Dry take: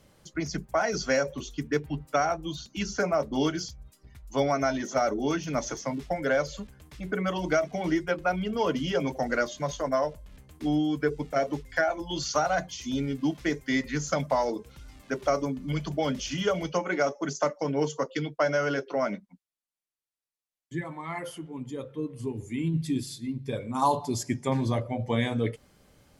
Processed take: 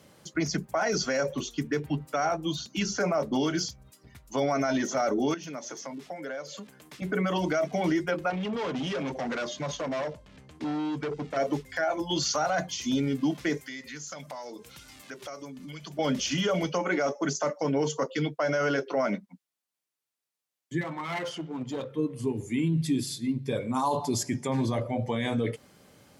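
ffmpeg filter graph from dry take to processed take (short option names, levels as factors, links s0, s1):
-filter_complex "[0:a]asettb=1/sr,asplit=3[s0][s1][s2];[s0]atrim=end=5.344[s3];[s1]atrim=start=5.34:end=7.02,asetpts=PTS-STARTPTS,afade=t=in:d=0.004:c=qsin,afade=t=out:st=1.676:d=0.004:c=qsin,highpass=190,acompressor=threshold=0.00708:ratio=3:attack=3.2:release=140:knee=1:detection=peak[s4];[s2]atrim=start=7.016[s5];[s3][s4]acrossfade=d=0.004:c1=hsin:c2=qsin[s6];[s6][s5]acrossfade=d=0.004:c1=qsin:c2=hsin,asettb=1/sr,asplit=3[s7][s8][s9];[s7]atrim=end=8.304[s10];[s8]atrim=start=8.3:end=11.37,asetpts=PTS-STARTPTS,afade=t=in:d=0.004:c=qsin,afade=t=out:st=3.066:d=0.004:c=qsin,acompressor=threshold=0.0355:ratio=2:attack=3.2:release=140:knee=1:detection=peak,asoftclip=type=hard:threshold=0.0224,lowpass=6000[s11];[s9]atrim=start=11.366[s12];[s10][s11]acrossfade=d=0.004:c1=hsin:c2=qsin[s13];[s13][s12]acrossfade=d=0.004:c1=qsin:c2=hsin,asettb=1/sr,asplit=3[s14][s15][s16];[s14]atrim=end=13.574[s17];[s15]atrim=start=13.57:end=15.99,asetpts=PTS-STARTPTS,afade=t=in:d=0.004:c=qsin,afade=t=out:st=2.416:d=0.004:c=qsin,tiltshelf=f=1400:g=-5,acompressor=threshold=0.00631:ratio=4:attack=3.2:release=140:knee=1:detection=peak[s18];[s16]atrim=start=15.986[s19];[s17][s18]acrossfade=d=0.004:c1=hsin:c2=qsin[s20];[s20][s19]acrossfade=d=0.004:c1=qsin:c2=hsin,asettb=1/sr,asplit=3[s21][s22][s23];[s21]atrim=end=20.814[s24];[s22]atrim=start=20.81:end=21.89,asetpts=PTS-STARTPTS,afade=t=in:d=0.004:c=qsin,afade=t=out:st=1.076:d=0.004:c=qsin,lowpass=f=5900:w=0.5412,lowpass=f=5900:w=1.3066,highshelf=f=4300:g=9,aeval=exprs='clip(val(0),-1,0.0141)':c=same[s25];[s23]atrim=start=21.886[s26];[s24][s25]acrossfade=d=0.004:c1=hsin:c2=qsin[s27];[s27][s26]acrossfade=d=0.004:c1=qsin:c2=hsin,alimiter=limit=0.0708:level=0:latency=1:release=26,highpass=120,volume=1.68"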